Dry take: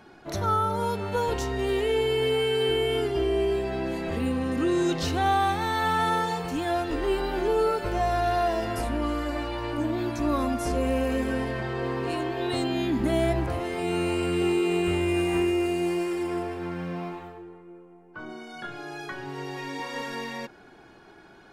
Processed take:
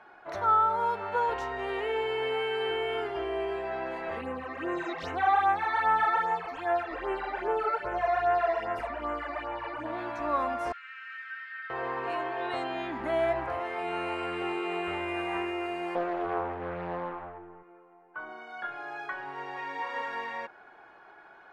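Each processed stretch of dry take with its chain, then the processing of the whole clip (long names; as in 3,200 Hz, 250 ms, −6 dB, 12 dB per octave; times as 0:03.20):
0:04.21–0:09.86: dynamic equaliser 2,200 Hz, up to +5 dB, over −42 dBFS, Q 1.6 + all-pass phaser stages 12, 2.5 Hz, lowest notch 150–4,600 Hz
0:10.72–0:11.70: Chebyshev high-pass with heavy ripple 1,300 Hz, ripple 3 dB + high-frequency loss of the air 150 metres
0:15.95–0:17.63: RIAA equalisation playback + highs frequency-modulated by the lows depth 0.84 ms
whole clip: low-pass filter 3,400 Hz 6 dB per octave; three-way crossover with the lows and the highs turned down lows −21 dB, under 590 Hz, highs −15 dB, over 2,300 Hz; level +4 dB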